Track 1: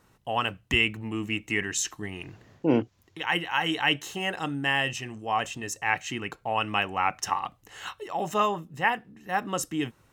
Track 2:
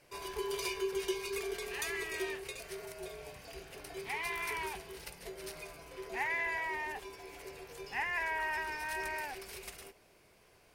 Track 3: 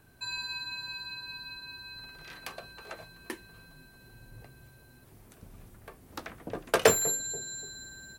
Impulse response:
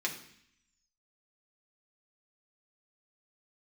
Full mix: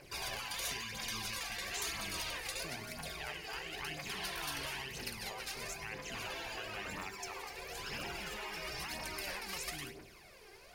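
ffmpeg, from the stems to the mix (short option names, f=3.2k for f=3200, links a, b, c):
-filter_complex "[0:a]equalizer=f=460:t=o:w=0.88:g=-15,volume=-13dB,asplit=3[a][b][c];[b]volume=-15.5dB[d];[1:a]equalizer=f=4.4k:t=o:w=0.44:g=4,volume=0.5dB,asplit=2[e][f];[f]volume=-5dB[g];[2:a]tremolo=f=8.4:d=0.82,lowpass=f=1.3k:p=1,aeval=exprs='val(0)*gte(abs(val(0)),0.00631)':c=same,volume=-9dB,asplit=2[h][i];[i]volume=-19dB[j];[c]apad=whole_len=473655[k];[e][k]sidechaincompress=threshold=-47dB:ratio=16:attack=36:release=390[l];[a][h]amix=inputs=2:normalize=0,acompressor=threshold=-44dB:ratio=6,volume=0dB[m];[3:a]atrim=start_sample=2205[n];[d][g][j]amix=inputs=3:normalize=0[o];[o][n]afir=irnorm=-1:irlink=0[p];[l][m][p]amix=inputs=3:normalize=0,aphaser=in_gain=1:out_gain=1:delay=2.6:decay=0.62:speed=1:type=triangular,afftfilt=real='re*lt(hypot(re,im),0.0447)':imag='im*lt(hypot(re,im),0.0447)':win_size=1024:overlap=0.75"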